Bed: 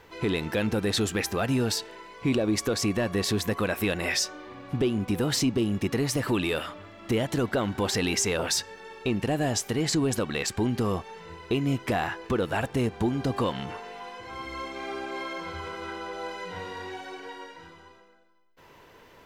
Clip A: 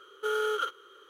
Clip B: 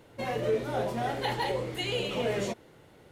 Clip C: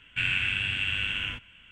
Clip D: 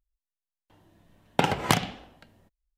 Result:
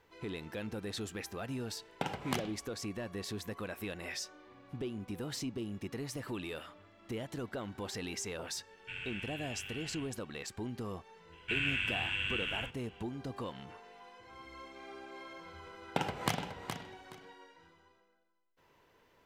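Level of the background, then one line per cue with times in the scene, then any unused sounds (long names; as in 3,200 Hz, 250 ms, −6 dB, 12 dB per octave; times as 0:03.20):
bed −14 dB
0:00.62: mix in D −13.5 dB
0:08.71: mix in C −16.5 dB
0:11.32: mix in C −6.5 dB
0:14.57: mix in D −10.5 dB + repeating echo 420 ms, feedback 20%, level −8 dB
not used: A, B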